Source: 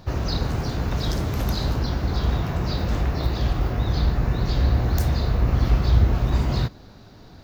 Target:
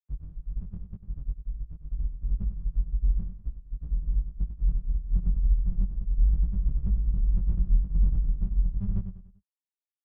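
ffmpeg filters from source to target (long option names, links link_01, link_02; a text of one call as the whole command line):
ffmpeg -i in.wav -filter_complex "[0:a]afftfilt=real='re*gte(hypot(re,im),0.794)':imag='im*gte(hypot(re,im),0.794)':win_size=1024:overlap=0.75,acrossover=split=100|830|2400[link_01][link_02][link_03][link_04];[link_02]aeval=exprs='max(val(0),0)':channel_layout=same[link_05];[link_01][link_05][link_03][link_04]amix=inputs=4:normalize=0,alimiter=limit=-16dB:level=0:latency=1:release=232,equalizer=frequency=100:width_type=o:width=0.67:gain=-9,equalizer=frequency=250:width_type=o:width=0.67:gain=11,equalizer=frequency=1600:width_type=o:width=0.67:gain=5,equalizer=frequency=4000:width_type=o:width=0.67:gain=4,equalizer=frequency=10000:width_type=o:width=0.67:gain=-7,aecho=1:1:72|144|216|288:0.316|0.126|0.0506|0.0202,asetrate=32667,aresample=44100,flanger=delay=18.5:depth=4.9:speed=2,volume=4dB" out.wav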